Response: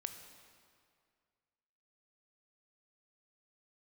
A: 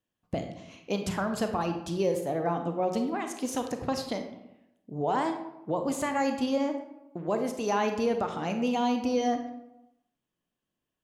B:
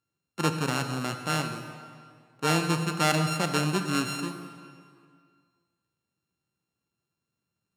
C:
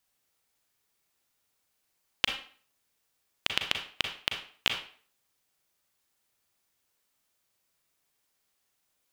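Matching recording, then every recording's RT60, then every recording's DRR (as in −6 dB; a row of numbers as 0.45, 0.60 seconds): B; 0.90, 2.1, 0.50 seconds; 5.5, 7.0, 3.5 decibels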